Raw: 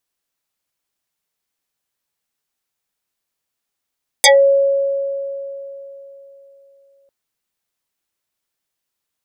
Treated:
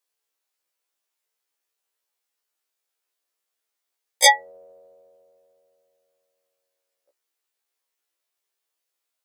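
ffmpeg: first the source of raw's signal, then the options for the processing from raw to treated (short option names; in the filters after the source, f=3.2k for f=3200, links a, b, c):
-f lavfi -i "aevalsrc='0.562*pow(10,-3*t/3.55)*sin(2*PI*553*t+8.6*pow(10,-3*t/0.17)*sin(2*PI*2.52*553*t))':d=2.85:s=44100"
-af "highpass=f=340:w=0.5412,highpass=f=340:w=1.3066,equalizer=f=440:w=5.1:g=2,afftfilt=real='re*1.73*eq(mod(b,3),0)':imag='im*1.73*eq(mod(b,3),0)':win_size=2048:overlap=0.75"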